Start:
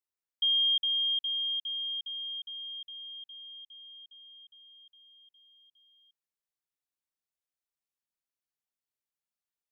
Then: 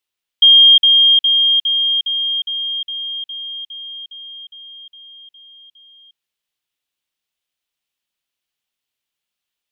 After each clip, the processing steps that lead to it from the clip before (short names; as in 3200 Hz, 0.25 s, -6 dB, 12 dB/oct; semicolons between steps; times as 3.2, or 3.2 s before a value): bell 3100 Hz +10.5 dB 1 oct; gain +8 dB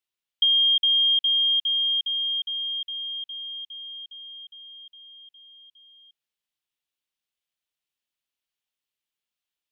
compressor, threshold -11 dBFS, peak gain reduction 5 dB; gain -7 dB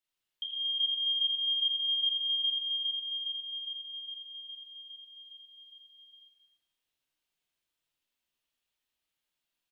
limiter -22.5 dBFS, peak gain reduction 10 dB; loudspeakers at several distances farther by 29 m -3 dB, 90 m -12 dB; shoebox room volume 940 m³, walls mixed, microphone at 2.7 m; gain -4.5 dB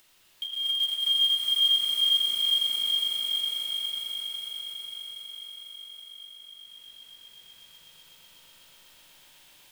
short-mantissa float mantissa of 2-bit; upward compressor, threshold -46 dBFS; swelling echo 0.124 s, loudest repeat 5, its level -5 dB; gain +3 dB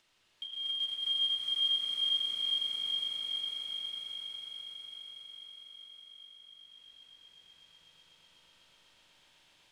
air absorption 70 m; gain -6 dB